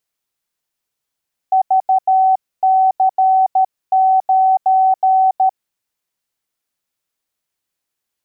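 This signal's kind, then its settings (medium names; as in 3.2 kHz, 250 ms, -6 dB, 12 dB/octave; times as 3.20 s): Morse "VC9" 13 wpm 759 Hz -9 dBFS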